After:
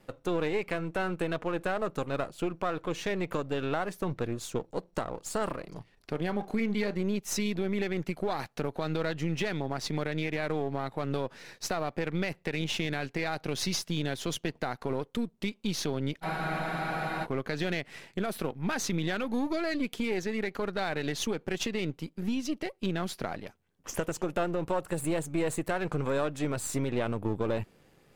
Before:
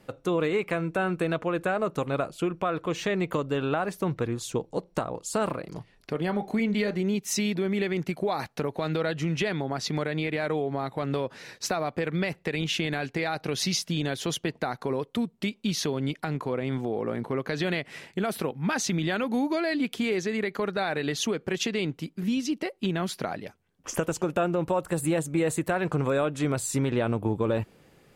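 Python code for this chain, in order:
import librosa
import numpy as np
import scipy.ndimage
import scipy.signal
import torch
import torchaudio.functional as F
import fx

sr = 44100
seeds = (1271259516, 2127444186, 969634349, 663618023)

y = np.where(x < 0.0, 10.0 ** (-7.0 / 20.0) * x, x)
y = fx.spec_freeze(y, sr, seeds[0], at_s=16.26, hold_s=0.97)
y = F.gain(torch.from_numpy(y), -1.5).numpy()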